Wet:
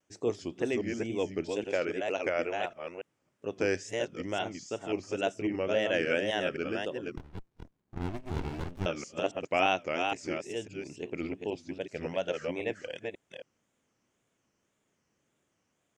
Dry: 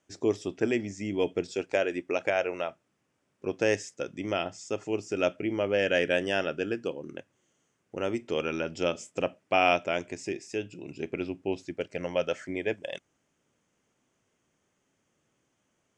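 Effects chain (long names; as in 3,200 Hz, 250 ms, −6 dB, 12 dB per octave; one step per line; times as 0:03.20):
delay that plays each chunk backwards 274 ms, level −4 dB
tape wow and flutter 150 cents
0:07.17–0:08.86: windowed peak hold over 65 samples
level −4 dB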